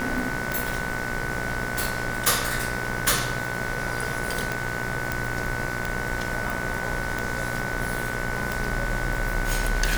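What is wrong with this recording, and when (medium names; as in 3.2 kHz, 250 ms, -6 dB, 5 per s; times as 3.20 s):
buzz 60 Hz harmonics 37 -33 dBFS
tick
whine 1.5 kHz -32 dBFS
5.12 s: pop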